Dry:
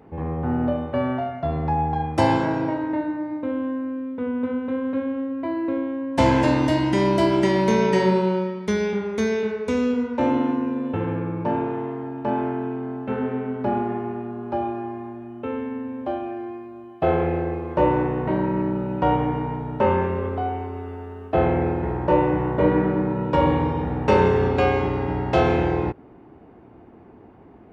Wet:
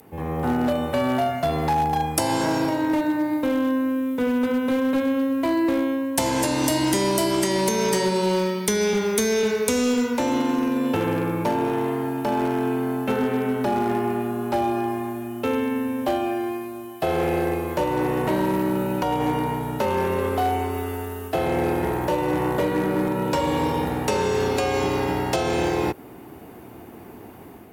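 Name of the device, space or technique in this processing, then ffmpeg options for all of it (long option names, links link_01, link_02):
FM broadcast chain: -filter_complex "[0:a]highpass=57,dynaudnorm=framelen=140:gausssize=5:maxgain=7dB,acrossover=split=220|1200|4000[link_01][link_02][link_03][link_04];[link_01]acompressor=threshold=-29dB:ratio=4[link_05];[link_02]acompressor=threshold=-17dB:ratio=4[link_06];[link_03]acompressor=threshold=-37dB:ratio=4[link_07];[link_04]acompressor=threshold=-47dB:ratio=4[link_08];[link_05][link_06][link_07][link_08]amix=inputs=4:normalize=0,aemphasis=mode=production:type=75fm,alimiter=limit=-11.5dB:level=0:latency=1:release=236,asoftclip=type=hard:threshold=-15.5dB,lowpass=frequency=15000:width=0.5412,lowpass=frequency=15000:width=1.3066,aemphasis=mode=production:type=75fm"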